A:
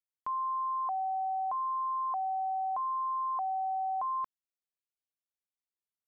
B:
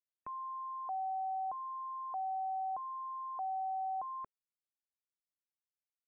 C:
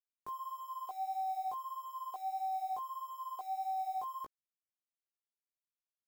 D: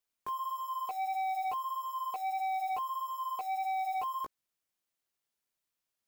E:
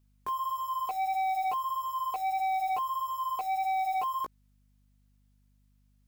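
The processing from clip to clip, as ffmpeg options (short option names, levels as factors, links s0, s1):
-filter_complex "[0:a]afftfilt=real='re*gte(hypot(re,im),0.00126)':imag='im*gte(hypot(re,im),0.00126)':win_size=1024:overlap=0.75,equalizer=f=990:w=1.5:g=-6.5,acrossover=split=580|700[s0][s1][s2];[s2]alimiter=level_in=10:limit=0.0631:level=0:latency=1,volume=0.1[s3];[s0][s1][s3]amix=inputs=3:normalize=0,volume=1.12"
-af "equalizer=f=400:t=o:w=0.28:g=8.5,acrusher=bits=8:mix=0:aa=0.000001,flanger=delay=15.5:depth=3.5:speed=1.6,volume=1.26"
-af "asoftclip=type=tanh:threshold=0.0112,volume=2.66"
-af "aeval=exprs='val(0)+0.000355*(sin(2*PI*50*n/s)+sin(2*PI*2*50*n/s)/2+sin(2*PI*3*50*n/s)/3+sin(2*PI*4*50*n/s)/4+sin(2*PI*5*50*n/s)/5)':c=same,volume=1.58"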